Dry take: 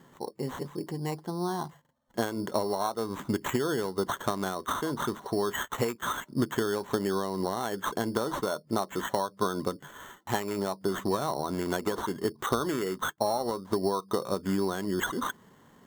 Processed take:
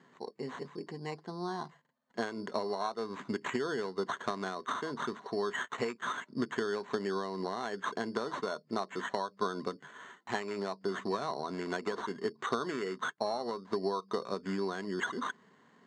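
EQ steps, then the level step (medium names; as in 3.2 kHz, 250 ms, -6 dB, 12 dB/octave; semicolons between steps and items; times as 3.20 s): cabinet simulation 260–5900 Hz, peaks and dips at 320 Hz -8 dB, 550 Hz -8 dB, 850 Hz -7 dB, 1.3 kHz -4 dB, 3.3 kHz -7 dB, 5.6 kHz -8 dB; 0.0 dB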